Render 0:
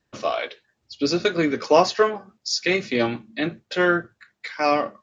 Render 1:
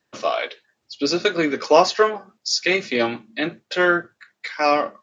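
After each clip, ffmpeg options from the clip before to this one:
ffmpeg -i in.wav -af "highpass=frequency=310:poles=1,volume=3dB" out.wav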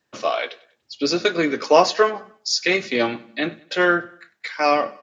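ffmpeg -i in.wav -af "aecho=1:1:97|194|291:0.0891|0.0339|0.0129" out.wav

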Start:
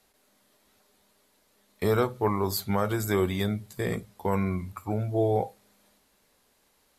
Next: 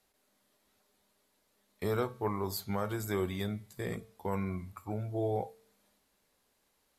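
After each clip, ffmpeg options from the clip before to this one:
ffmpeg -i in.wav -af "bandreject=frequency=224.2:width_type=h:width=4,bandreject=frequency=448.4:width_type=h:width=4,bandreject=frequency=672.6:width_type=h:width=4,bandreject=frequency=896.8:width_type=h:width=4,bandreject=frequency=1121:width_type=h:width=4,bandreject=frequency=1345.2:width_type=h:width=4,bandreject=frequency=1569.4:width_type=h:width=4,bandreject=frequency=1793.6:width_type=h:width=4,bandreject=frequency=2017.8:width_type=h:width=4,bandreject=frequency=2242:width_type=h:width=4,bandreject=frequency=2466.2:width_type=h:width=4,bandreject=frequency=2690.4:width_type=h:width=4,bandreject=frequency=2914.6:width_type=h:width=4,bandreject=frequency=3138.8:width_type=h:width=4,bandreject=frequency=3363:width_type=h:width=4,bandreject=frequency=3587.2:width_type=h:width=4,bandreject=frequency=3811.4:width_type=h:width=4,bandreject=frequency=4035.6:width_type=h:width=4,bandreject=frequency=4259.8:width_type=h:width=4,bandreject=frequency=4484:width_type=h:width=4,bandreject=frequency=4708.2:width_type=h:width=4,bandreject=frequency=4932.4:width_type=h:width=4,bandreject=frequency=5156.6:width_type=h:width=4,bandreject=frequency=5380.8:width_type=h:width=4,bandreject=frequency=5605:width_type=h:width=4,bandreject=frequency=5829.2:width_type=h:width=4,bandreject=frequency=6053.4:width_type=h:width=4,bandreject=frequency=6277.6:width_type=h:width=4,bandreject=frequency=6501.8:width_type=h:width=4,bandreject=frequency=6726:width_type=h:width=4,bandreject=frequency=6950.2:width_type=h:width=4,volume=-7.5dB" out.wav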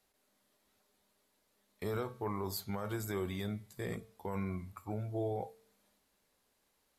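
ffmpeg -i in.wav -af "alimiter=level_in=1.5dB:limit=-24dB:level=0:latency=1:release=24,volume=-1.5dB,volume=-2dB" out.wav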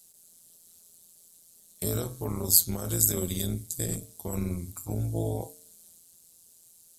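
ffmpeg -i in.wav -af "tremolo=f=170:d=0.919,crystalizer=i=3.5:c=0,equalizer=frequency=125:width_type=o:width=1:gain=8,equalizer=frequency=1000:width_type=o:width=1:gain=-7,equalizer=frequency=2000:width_type=o:width=1:gain=-10,equalizer=frequency=8000:width_type=o:width=1:gain=10,volume=8dB" out.wav

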